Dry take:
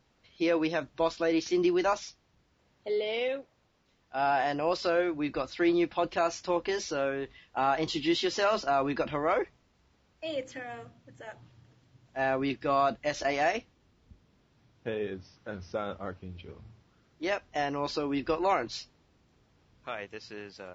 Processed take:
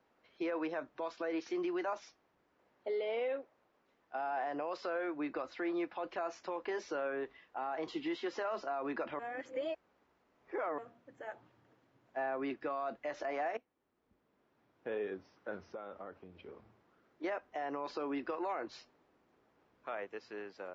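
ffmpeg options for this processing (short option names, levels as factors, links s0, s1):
-filter_complex "[0:a]asettb=1/sr,asplit=3[s0][s1][s2];[s0]atrim=end=15.734[s3];[s1]atrim=start=15.73:end=17.24,asetpts=PTS-STARTPTS,afade=t=in:d=0.004:c=qsin,afade=t=out:st=1.506:d=0.004:c=qsin,acompressor=threshold=0.01:ratio=6:attack=3.2:release=140:knee=1:detection=peak[s4];[s2]atrim=start=17.236[s5];[s3][s4]acrossfade=d=0.004:c1=hsin:c2=qsin[s6];[s6][s5]acrossfade=d=0.004:c1=qsin:c2=hsin,asplit=4[s7][s8][s9][s10];[s7]atrim=end=9.192[s11];[s8]atrim=start=9.188:end=10.782,asetpts=PTS-STARTPTS,areverse[s12];[s9]atrim=start=10.778:end=13.57,asetpts=PTS-STARTPTS,afade=t=out:st=2.788:d=0.004:c=hsin:silence=0.158489[s13];[s10]atrim=start=13.57,asetpts=PTS-STARTPTS,afade=t=in:d=1.32:silence=0.158489[s14];[s11][s12]acrossfade=d=0.004:c1=hsin:c2=hsin[s15];[s13][s14]concat=n=2:v=0:a=1[s16];[s15][s16]acrossfade=d=0.004:c1=hsin:c2=hsin,acrossover=split=250 2100:gain=0.112 1 0.2[s17][s18][s19];[s17][s18][s19]amix=inputs=3:normalize=0,acrossover=split=810|1800[s20][s21][s22];[s20]acompressor=threshold=0.0178:ratio=4[s23];[s21]acompressor=threshold=0.0158:ratio=4[s24];[s22]acompressor=threshold=0.00316:ratio=4[s25];[s23][s24][s25]amix=inputs=3:normalize=0,alimiter=level_in=1.78:limit=0.0631:level=0:latency=1:release=46,volume=0.562"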